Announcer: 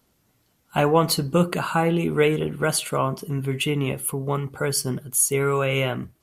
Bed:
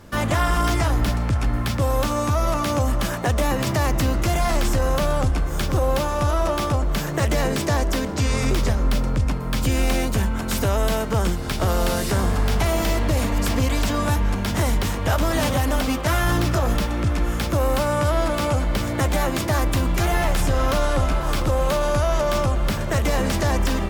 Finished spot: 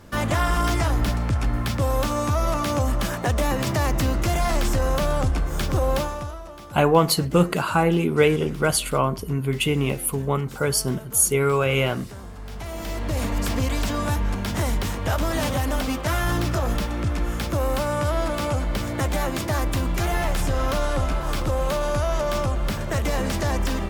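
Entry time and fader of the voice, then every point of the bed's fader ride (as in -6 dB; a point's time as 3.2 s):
6.00 s, +1.5 dB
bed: 6 s -1.5 dB
6.43 s -18 dB
12.36 s -18 dB
13.25 s -3 dB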